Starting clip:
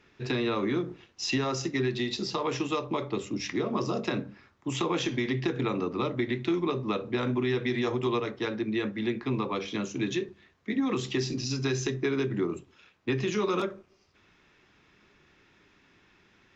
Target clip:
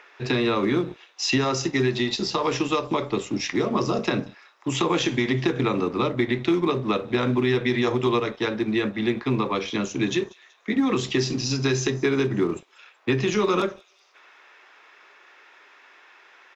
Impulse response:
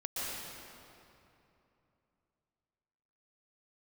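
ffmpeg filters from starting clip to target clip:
-filter_complex "[0:a]acrossover=split=510|2300[link_01][link_02][link_03];[link_01]aeval=exprs='sgn(val(0))*max(abs(val(0))-0.00376,0)':channel_layout=same[link_04];[link_02]acompressor=mode=upward:threshold=-51dB:ratio=2.5[link_05];[link_03]aecho=1:1:188|376|564|752:0.0841|0.0454|0.0245|0.0132[link_06];[link_04][link_05][link_06]amix=inputs=3:normalize=0,volume=6.5dB"

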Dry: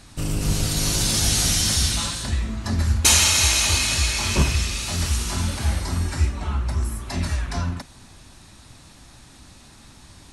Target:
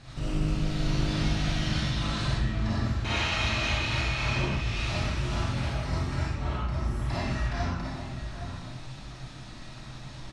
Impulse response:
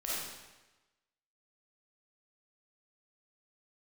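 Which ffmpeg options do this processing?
-filter_complex "[0:a]acrossover=split=3300[link_01][link_02];[link_02]acompressor=threshold=-36dB:ratio=4:attack=1:release=60[link_03];[link_01][link_03]amix=inputs=2:normalize=0,lowpass=4600,equalizer=frequency=130:width_type=o:width=0.22:gain=14.5,acompressor=threshold=-28dB:ratio=4,asplit=2[link_04][link_05];[link_05]adelay=816.3,volume=-8dB,highshelf=frequency=4000:gain=-18.4[link_06];[link_04][link_06]amix=inputs=2:normalize=0[link_07];[1:a]atrim=start_sample=2205,afade=type=out:start_time=0.24:duration=0.01,atrim=end_sample=11025[link_08];[link_07][link_08]afir=irnorm=-1:irlink=0"

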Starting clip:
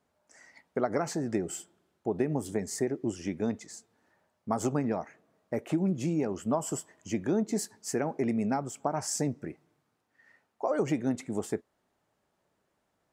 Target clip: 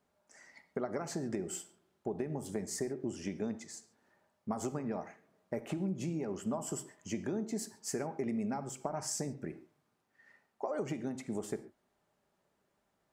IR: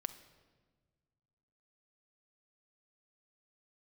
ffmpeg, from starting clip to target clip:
-filter_complex "[0:a]acompressor=threshold=-31dB:ratio=6[link_01];[1:a]atrim=start_sample=2205,atrim=end_sample=6615[link_02];[link_01][link_02]afir=irnorm=-1:irlink=0"

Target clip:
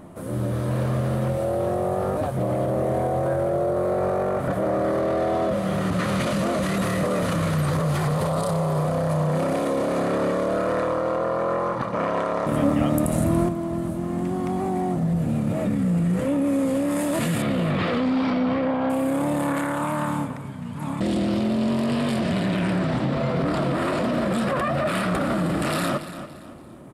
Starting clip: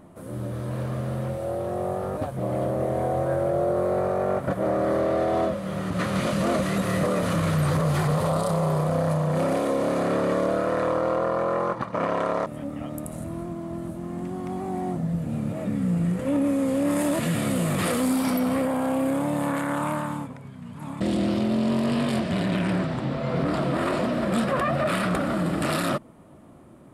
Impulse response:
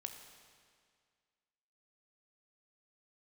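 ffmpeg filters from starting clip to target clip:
-filter_complex "[0:a]asettb=1/sr,asplit=3[link_01][link_02][link_03];[link_01]atrim=end=17.424[link_04];[link_02]atrim=start=17.42:end=18.9,asetpts=PTS-STARTPTS,afade=type=in:duration=0.004:curve=qsin,afade=type=out:start_time=1.476:duration=0.004:curve=qsin,lowpass=frequency=4100:width=0.5412,lowpass=frequency=4100:width=1.3066[link_05];[link_03]atrim=start=18.896[link_06];[link_04][link_05]acrossfade=duration=0.004:curve1=hsin:curve2=qsin[link_07];[link_07][link_06]acrossfade=duration=0.004:curve1=qsin:curve2=hsin,aecho=1:1:285|570|855:0.133|0.0453|0.0154,alimiter=limit=-22dB:level=0:latency=1:release=21,asettb=1/sr,asplit=3[link_08][link_09][link_10];[link_08]atrim=end=12.464[link_11];[link_09]atrim=start=12.46:end=13.49,asetpts=PTS-STARTPTS,afade=type=in:duration=0.004:curve=qsin,afade=type=out:start_time=1.026:duration=0.004:curve=qsin,acontrast=64[link_12];[link_10]atrim=start=13.486[link_13];[link_11][link_12]acrossfade=duration=0.004:curve1=hsin:curve2=qsin[link_14];[link_14][link_13]acrossfade=duration=0.004:curve1=qsin:curve2=hsin,volume=6dB"

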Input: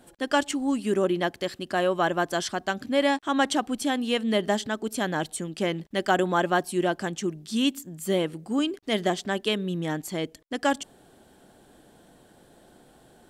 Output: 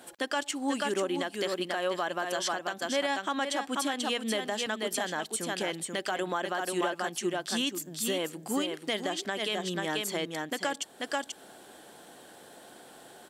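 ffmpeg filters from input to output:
ffmpeg -i in.wav -filter_complex "[0:a]highpass=frequency=680:poles=1,aecho=1:1:486:0.473,asplit=2[link_01][link_02];[link_02]acompressor=threshold=-40dB:ratio=6,volume=3dB[link_03];[link_01][link_03]amix=inputs=2:normalize=0,alimiter=limit=-20dB:level=0:latency=1:release=144" out.wav

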